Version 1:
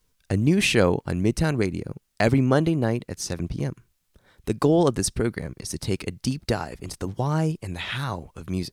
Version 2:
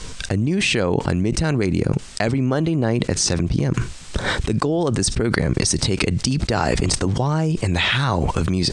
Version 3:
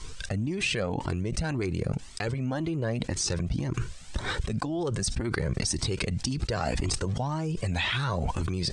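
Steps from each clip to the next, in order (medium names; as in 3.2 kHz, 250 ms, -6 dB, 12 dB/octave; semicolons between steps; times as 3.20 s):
elliptic low-pass 8.6 kHz, stop band 60 dB; level flattener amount 100%; trim -2.5 dB
Shepard-style flanger rising 1.9 Hz; trim -5 dB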